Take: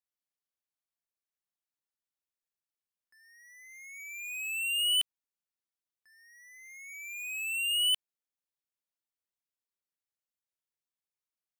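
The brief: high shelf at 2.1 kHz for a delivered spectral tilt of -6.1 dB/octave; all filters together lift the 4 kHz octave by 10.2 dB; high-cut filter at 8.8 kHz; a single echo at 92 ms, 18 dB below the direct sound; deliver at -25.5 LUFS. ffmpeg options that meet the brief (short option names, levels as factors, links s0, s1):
-af "lowpass=8800,highshelf=f=2100:g=9,equalizer=f=4000:t=o:g=7.5,aecho=1:1:92:0.126,volume=0.501"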